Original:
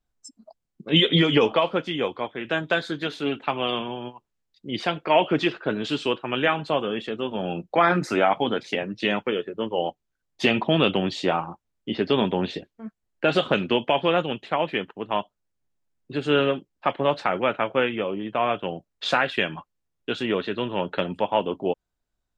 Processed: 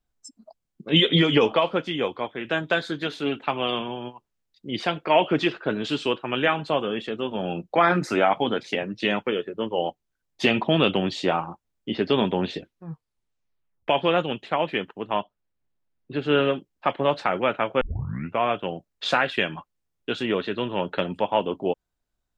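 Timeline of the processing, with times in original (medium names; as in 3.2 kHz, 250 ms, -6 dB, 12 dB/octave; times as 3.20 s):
12.56 s: tape stop 1.32 s
15.12–16.45 s: low-pass 3.8 kHz
17.81 s: tape start 0.59 s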